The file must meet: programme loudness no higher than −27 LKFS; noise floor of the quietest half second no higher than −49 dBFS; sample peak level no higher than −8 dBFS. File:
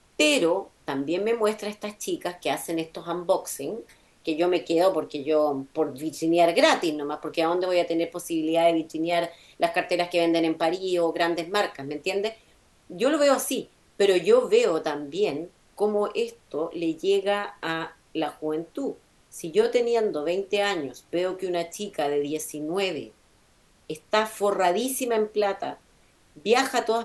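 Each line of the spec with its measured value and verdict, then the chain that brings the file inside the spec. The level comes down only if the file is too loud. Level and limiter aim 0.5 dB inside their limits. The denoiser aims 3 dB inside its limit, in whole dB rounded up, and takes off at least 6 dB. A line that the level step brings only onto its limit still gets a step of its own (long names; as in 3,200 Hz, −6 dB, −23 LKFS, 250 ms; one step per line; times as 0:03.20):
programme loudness −25.5 LKFS: out of spec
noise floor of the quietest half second −60 dBFS: in spec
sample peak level −5.0 dBFS: out of spec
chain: level −2 dB
brickwall limiter −8.5 dBFS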